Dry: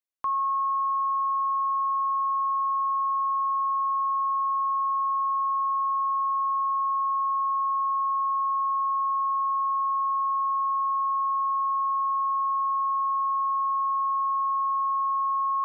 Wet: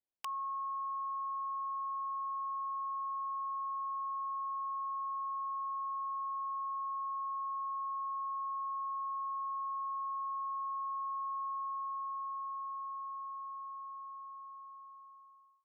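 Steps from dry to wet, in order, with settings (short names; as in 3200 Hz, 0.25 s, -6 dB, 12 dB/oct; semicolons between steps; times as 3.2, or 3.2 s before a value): ending faded out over 4.21 s; steep low-pass 970 Hz 72 dB/oct; wrapped overs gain 32.5 dB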